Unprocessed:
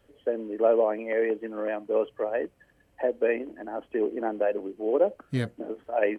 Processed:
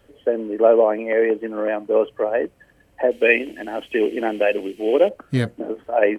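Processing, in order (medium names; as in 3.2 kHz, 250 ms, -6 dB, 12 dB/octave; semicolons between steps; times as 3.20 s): 3.11–5.09 s: resonant high shelf 1.8 kHz +12.5 dB, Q 1.5; trim +7.5 dB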